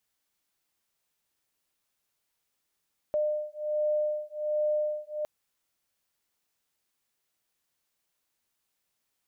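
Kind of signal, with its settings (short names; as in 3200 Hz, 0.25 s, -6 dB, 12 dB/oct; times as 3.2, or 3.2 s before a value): beating tones 603 Hz, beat 1.3 Hz, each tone -29.5 dBFS 2.11 s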